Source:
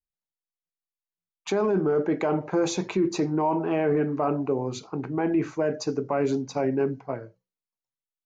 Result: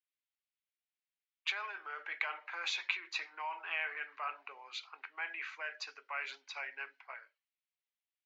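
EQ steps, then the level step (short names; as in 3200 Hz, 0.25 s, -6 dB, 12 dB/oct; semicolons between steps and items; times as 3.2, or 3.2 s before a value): ladder high-pass 1700 Hz, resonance 20%; air absorption 490 m; high shelf 4200 Hz +7 dB; +14.0 dB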